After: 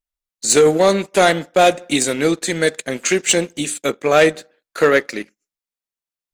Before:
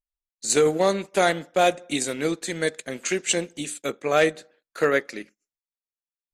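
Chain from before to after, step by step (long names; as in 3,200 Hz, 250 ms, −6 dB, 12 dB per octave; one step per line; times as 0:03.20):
leveller curve on the samples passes 1
level +5 dB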